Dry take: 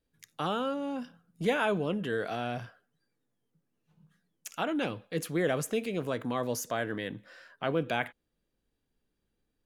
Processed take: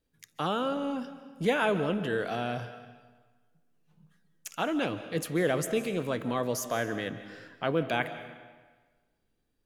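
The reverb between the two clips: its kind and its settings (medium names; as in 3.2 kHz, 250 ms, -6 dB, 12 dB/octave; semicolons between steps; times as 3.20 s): algorithmic reverb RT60 1.4 s, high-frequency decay 0.85×, pre-delay 110 ms, DRR 11.5 dB; trim +1.5 dB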